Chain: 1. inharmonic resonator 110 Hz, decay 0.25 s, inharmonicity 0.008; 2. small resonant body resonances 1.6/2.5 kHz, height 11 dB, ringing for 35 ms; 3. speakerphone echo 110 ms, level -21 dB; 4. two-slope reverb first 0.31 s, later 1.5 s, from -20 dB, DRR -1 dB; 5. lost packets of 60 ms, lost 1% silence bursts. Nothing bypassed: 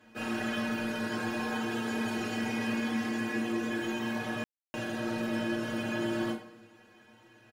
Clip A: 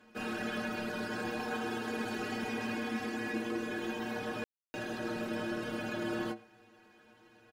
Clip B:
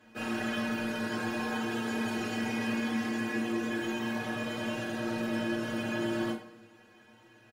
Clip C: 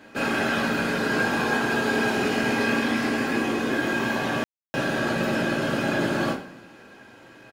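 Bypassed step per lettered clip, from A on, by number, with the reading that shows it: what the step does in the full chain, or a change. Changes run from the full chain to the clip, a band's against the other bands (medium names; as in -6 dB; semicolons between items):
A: 4, 500 Hz band +2.5 dB; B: 5, momentary loudness spread change -2 LU; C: 1, 250 Hz band -3.5 dB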